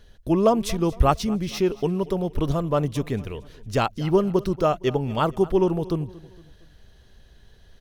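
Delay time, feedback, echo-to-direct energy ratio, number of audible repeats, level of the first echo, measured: 231 ms, 45%, -19.0 dB, 3, -20.0 dB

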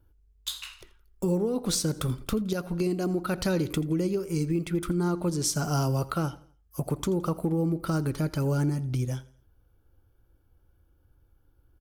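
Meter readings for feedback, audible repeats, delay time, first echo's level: 39%, 2, 84 ms, -20.0 dB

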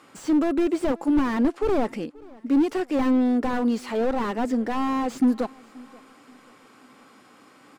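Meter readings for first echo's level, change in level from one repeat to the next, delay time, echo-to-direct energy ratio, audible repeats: -24.0 dB, -8.0 dB, 532 ms, -23.5 dB, 2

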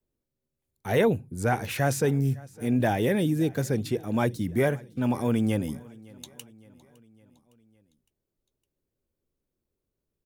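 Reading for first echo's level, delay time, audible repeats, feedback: -23.0 dB, 560 ms, 3, 56%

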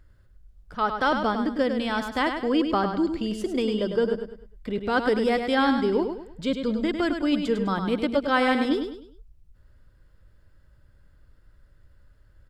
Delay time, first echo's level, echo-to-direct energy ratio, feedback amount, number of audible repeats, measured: 102 ms, -7.0 dB, -6.5 dB, 36%, 4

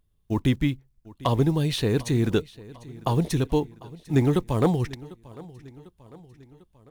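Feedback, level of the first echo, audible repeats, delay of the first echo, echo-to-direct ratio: 54%, -20.5 dB, 3, 748 ms, -19.0 dB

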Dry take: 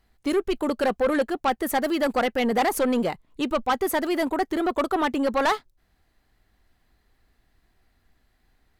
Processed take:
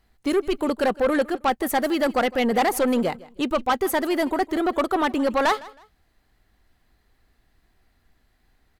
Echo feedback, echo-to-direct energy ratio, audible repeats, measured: 28%, -20.0 dB, 2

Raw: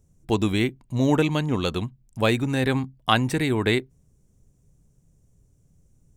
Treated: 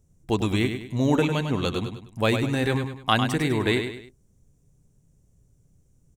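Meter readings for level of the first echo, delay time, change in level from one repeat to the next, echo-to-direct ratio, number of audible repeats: -7.5 dB, 101 ms, -8.0 dB, -7.0 dB, 3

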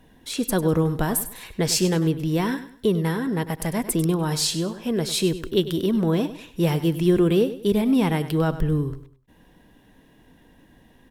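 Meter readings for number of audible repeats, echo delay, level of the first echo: 3, 99 ms, -13.5 dB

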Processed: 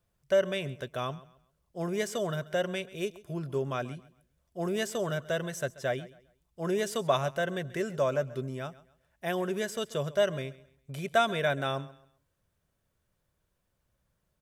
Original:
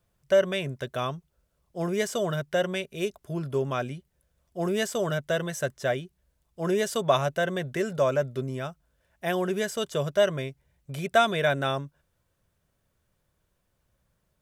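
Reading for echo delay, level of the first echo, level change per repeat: 134 ms, -19.0 dB, -10.5 dB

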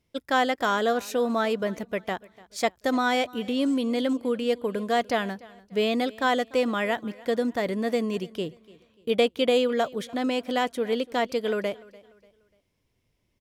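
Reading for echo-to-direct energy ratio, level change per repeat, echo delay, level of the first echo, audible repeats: -21.5 dB, -8.5 dB, 294 ms, -22.0 dB, 2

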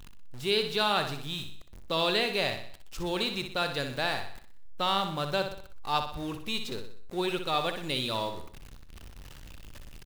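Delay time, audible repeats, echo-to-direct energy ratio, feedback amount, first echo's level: 62 ms, 5, -7.0 dB, 46%, -8.0 dB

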